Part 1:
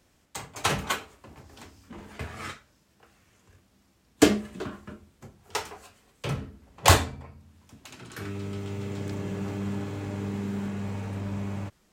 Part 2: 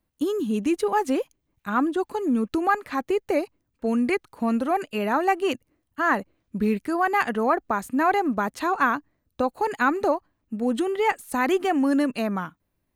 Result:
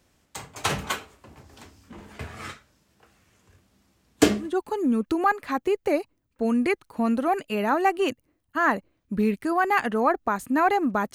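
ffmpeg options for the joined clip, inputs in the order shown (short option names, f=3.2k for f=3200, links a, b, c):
-filter_complex "[0:a]apad=whole_dur=11.14,atrim=end=11.14,atrim=end=4.56,asetpts=PTS-STARTPTS[a];[1:a]atrim=start=1.81:end=8.57,asetpts=PTS-STARTPTS[b];[a][b]acrossfade=d=0.18:c1=tri:c2=tri"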